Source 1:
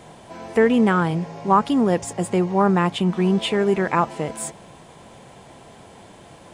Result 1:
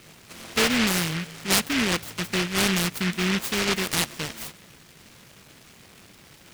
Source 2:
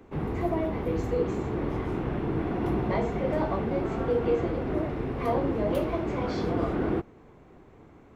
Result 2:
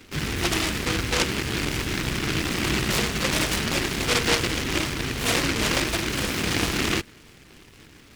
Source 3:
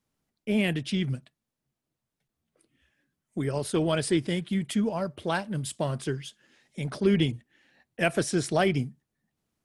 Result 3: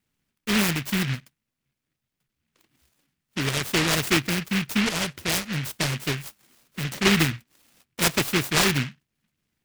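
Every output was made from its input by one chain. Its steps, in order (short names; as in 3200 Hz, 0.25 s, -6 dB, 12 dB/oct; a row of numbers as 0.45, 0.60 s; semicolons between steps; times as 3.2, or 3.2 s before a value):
noise-modulated delay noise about 2100 Hz, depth 0.42 ms; match loudness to -24 LUFS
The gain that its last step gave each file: -5.5, +3.0, +3.0 dB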